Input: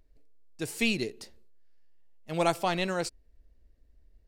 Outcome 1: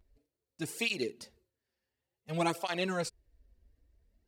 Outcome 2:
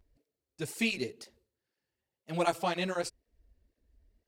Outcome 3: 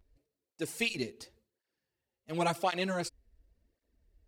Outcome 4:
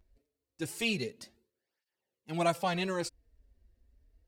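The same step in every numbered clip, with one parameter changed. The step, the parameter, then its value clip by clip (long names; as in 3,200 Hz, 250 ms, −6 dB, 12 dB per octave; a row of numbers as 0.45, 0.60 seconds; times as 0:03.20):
through-zero flanger with one copy inverted, nulls at: 0.56, 2, 0.92, 0.27 Hertz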